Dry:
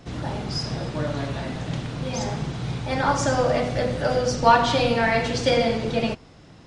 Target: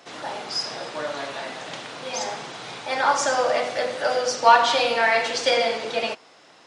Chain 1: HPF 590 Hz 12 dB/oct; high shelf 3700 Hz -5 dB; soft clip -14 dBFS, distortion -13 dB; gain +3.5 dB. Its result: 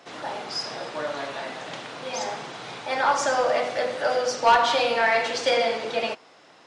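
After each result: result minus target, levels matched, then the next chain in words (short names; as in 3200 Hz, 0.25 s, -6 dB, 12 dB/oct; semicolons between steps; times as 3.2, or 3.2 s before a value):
soft clip: distortion +12 dB; 8000 Hz band -2.0 dB
HPF 590 Hz 12 dB/oct; high shelf 3700 Hz -5 dB; soft clip -4.5 dBFS, distortion -26 dB; gain +3.5 dB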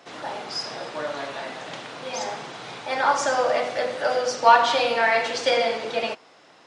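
8000 Hz band -3.0 dB
HPF 590 Hz 12 dB/oct; soft clip -4.5 dBFS, distortion -26 dB; gain +3.5 dB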